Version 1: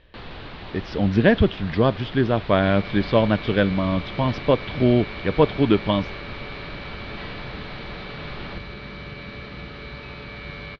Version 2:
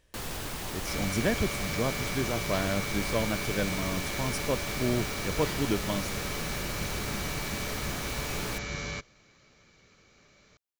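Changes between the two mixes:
speech −11.5 dB
second sound: entry −1.75 s
master: remove Butterworth low-pass 4,200 Hz 48 dB per octave

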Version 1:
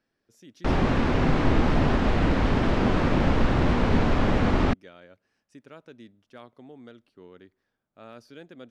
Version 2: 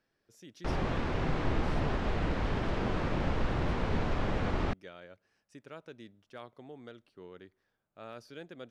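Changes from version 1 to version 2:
background −8.5 dB
master: add parametric band 250 Hz −5.5 dB 0.49 octaves

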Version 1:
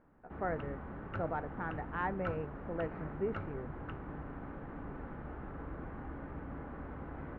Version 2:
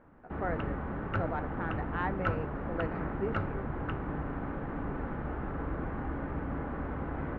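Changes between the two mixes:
speech: remove high-frequency loss of the air 300 metres
background +8.5 dB

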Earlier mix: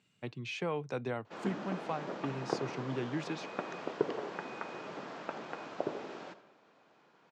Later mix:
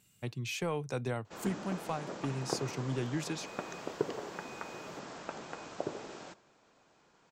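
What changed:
background: send −10.5 dB
master: remove band-pass filter 160–3,600 Hz

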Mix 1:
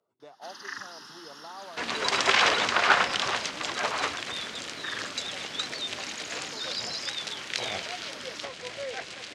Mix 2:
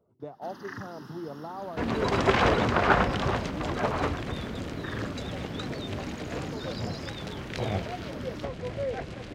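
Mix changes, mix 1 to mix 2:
speech +3.0 dB
master: remove meter weighting curve ITU-R 468

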